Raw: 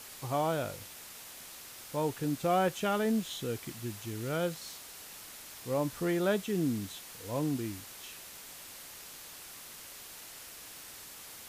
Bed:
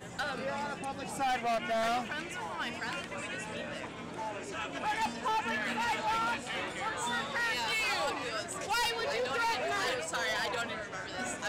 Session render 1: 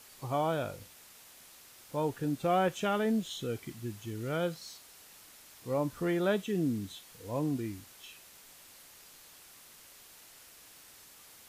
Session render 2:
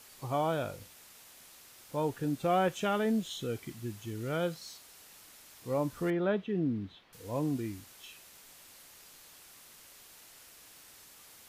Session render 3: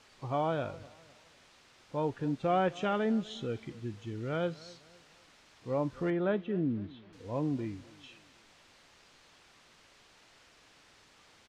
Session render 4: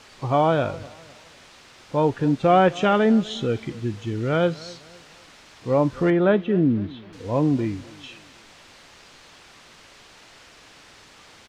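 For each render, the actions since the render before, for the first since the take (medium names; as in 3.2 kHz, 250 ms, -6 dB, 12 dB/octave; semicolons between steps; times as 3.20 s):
noise print and reduce 7 dB
6.10–7.13 s: distance through air 330 m
distance through air 130 m; feedback delay 253 ms, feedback 40%, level -21 dB
trim +12 dB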